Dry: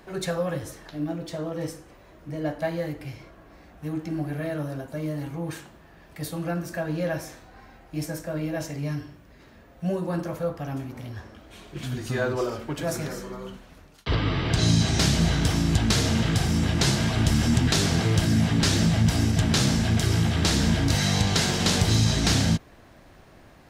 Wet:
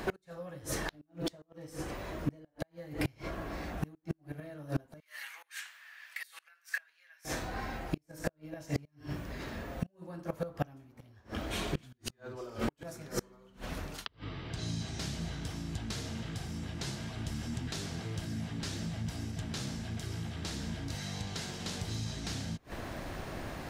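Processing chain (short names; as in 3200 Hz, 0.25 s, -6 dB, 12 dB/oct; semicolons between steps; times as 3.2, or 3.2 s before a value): flipped gate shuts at -22 dBFS, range -27 dB; 5–7.25 ladder high-pass 1500 Hz, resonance 40%; flipped gate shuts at -30 dBFS, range -32 dB; gain +10.5 dB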